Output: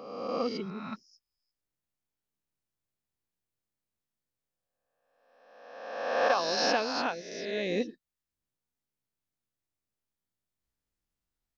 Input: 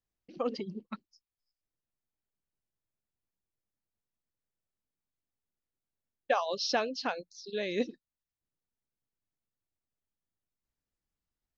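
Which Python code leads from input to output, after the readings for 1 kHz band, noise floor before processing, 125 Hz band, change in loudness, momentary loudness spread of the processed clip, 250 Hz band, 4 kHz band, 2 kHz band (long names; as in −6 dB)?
+4.5 dB, below −85 dBFS, +4.0 dB, +3.0 dB, 16 LU, +2.5 dB, +3.5 dB, +5.0 dB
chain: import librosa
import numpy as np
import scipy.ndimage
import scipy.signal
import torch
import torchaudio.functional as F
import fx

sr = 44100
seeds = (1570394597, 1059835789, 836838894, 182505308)

y = fx.spec_swells(x, sr, rise_s=1.36)
y = y * 10.0 ** (-1.5 / 20.0)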